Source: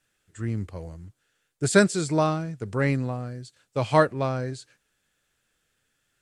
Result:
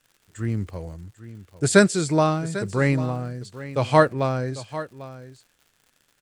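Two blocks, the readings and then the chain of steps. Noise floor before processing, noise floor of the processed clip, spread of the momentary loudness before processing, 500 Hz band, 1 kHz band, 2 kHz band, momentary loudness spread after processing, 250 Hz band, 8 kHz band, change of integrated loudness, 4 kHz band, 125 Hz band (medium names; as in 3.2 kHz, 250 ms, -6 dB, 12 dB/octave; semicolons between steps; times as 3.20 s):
-75 dBFS, -68 dBFS, 17 LU, +3.0 dB, +3.0 dB, +3.0 dB, 20 LU, +3.0 dB, +3.0 dB, +2.5 dB, +3.0 dB, +3.0 dB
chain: on a send: delay 796 ms -15 dB; on the sum: crackle 130 per s -47 dBFS; trim +3 dB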